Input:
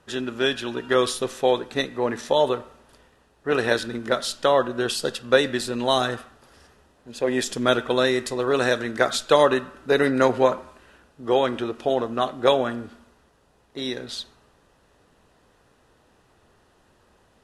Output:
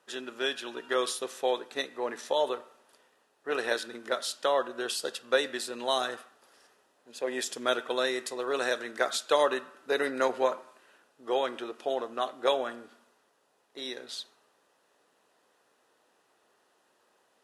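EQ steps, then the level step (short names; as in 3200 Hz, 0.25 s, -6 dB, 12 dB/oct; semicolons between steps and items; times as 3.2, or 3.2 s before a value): HPF 380 Hz 12 dB/oct; high shelf 7700 Hz +5 dB; -7.0 dB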